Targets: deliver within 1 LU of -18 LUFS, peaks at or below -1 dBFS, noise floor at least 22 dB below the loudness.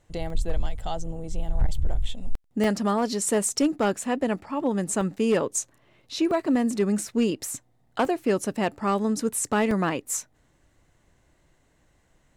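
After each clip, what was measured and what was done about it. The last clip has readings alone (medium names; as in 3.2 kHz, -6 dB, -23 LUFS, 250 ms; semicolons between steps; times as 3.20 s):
clipped samples 1.3%; clipping level -15.5 dBFS; dropouts 6; longest dropout 2.3 ms; loudness -26.5 LUFS; peak level -15.5 dBFS; loudness target -18.0 LUFS
-> clip repair -15.5 dBFS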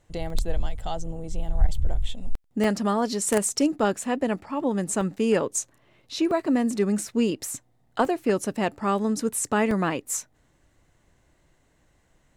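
clipped samples 0.0%; dropouts 6; longest dropout 2.3 ms
-> interpolate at 0.30/2.64/5.01/6.31/8.05/9.71 s, 2.3 ms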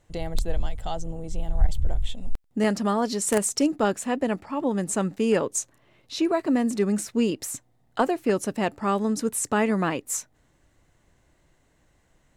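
dropouts 0; loudness -26.0 LUFS; peak level -6.5 dBFS; loudness target -18.0 LUFS
-> trim +8 dB; peak limiter -1 dBFS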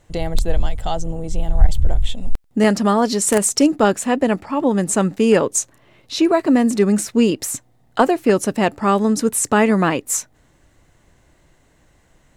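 loudness -18.5 LUFS; peak level -1.0 dBFS; noise floor -57 dBFS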